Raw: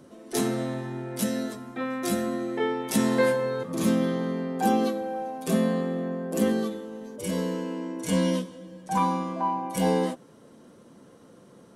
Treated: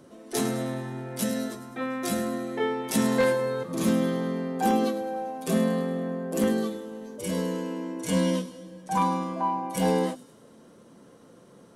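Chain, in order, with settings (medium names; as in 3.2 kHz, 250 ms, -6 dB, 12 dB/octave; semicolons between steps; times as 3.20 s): hum notches 50/100/150/200/250/300/350 Hz; wavefolder -14 dBFS; on a send: feedback echo behind a high-pass 104 ms, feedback 52%, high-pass 5.1 kHz, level -11 dB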